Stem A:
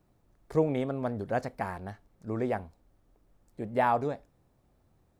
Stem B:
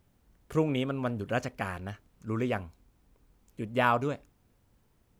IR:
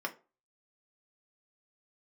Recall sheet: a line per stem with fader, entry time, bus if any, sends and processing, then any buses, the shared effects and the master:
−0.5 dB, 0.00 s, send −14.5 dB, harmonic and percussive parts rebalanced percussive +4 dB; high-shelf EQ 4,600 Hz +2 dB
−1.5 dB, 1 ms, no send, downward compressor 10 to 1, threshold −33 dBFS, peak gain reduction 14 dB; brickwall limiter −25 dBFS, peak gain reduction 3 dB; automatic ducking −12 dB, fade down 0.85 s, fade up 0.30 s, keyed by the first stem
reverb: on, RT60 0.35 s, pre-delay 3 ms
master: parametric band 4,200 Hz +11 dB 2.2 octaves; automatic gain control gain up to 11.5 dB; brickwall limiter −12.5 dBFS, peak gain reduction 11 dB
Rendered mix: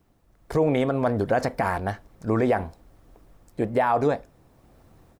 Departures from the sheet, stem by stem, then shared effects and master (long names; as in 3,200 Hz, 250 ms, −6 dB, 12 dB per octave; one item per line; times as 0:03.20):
stem A: missing high-shelf EQ 4,600 Hz +2 dB
master: missing parametric band 4,200 Hz +11 dB 2.2 octaves